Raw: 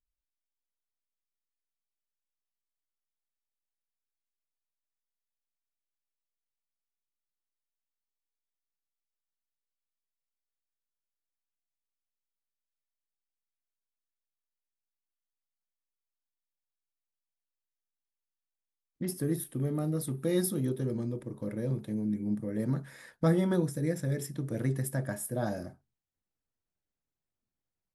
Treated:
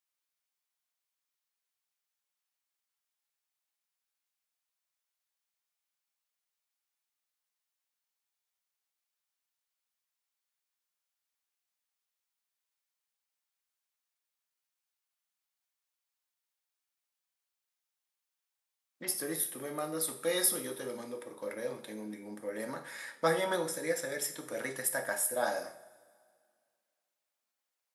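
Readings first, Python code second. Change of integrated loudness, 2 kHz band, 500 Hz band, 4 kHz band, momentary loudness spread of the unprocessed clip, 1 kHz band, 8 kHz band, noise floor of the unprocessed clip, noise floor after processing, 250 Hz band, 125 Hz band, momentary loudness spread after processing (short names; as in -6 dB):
-2.0 dB, +7.5 dB, 0.0 dB, +8.0 dB, 8 LU, +6.0 dB, +7.5 dB, under -85 dBFS, under -85 dBFS, -11.0 dB, -19.5 dB, 13 LU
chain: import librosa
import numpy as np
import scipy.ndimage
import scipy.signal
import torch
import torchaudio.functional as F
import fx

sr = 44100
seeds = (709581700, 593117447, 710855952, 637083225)

y = scipy.signal.sosfilt(scipy.signal.butter(2, 750.0, 'highpass', fs=sr, output='sos'), x)
y = fx.rev_double_slope(y, sr, seeds[0], early_s=0.5, late_s=2.1, knee_db=-18, drr_db=5.0)
y = F.gain(torch.from_numpy(y), 6.5).numpy()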